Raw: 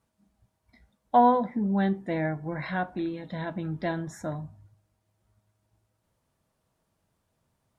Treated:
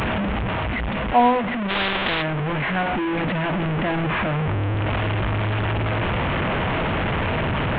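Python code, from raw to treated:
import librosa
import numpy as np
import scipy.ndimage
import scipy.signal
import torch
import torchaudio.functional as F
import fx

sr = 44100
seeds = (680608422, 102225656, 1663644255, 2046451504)

y = fx.delta_mod(x, sr, bps=16000, step_db=-21.5)
y = fx.rider(y, sr, range_db=10, speed_s=2.0)
y = fx.spectral_comp(y, sr, ratio=4.0, at=(1.68, 2.21), fade=0.02)
y = y * librosa.db_to_amplitude(4.0)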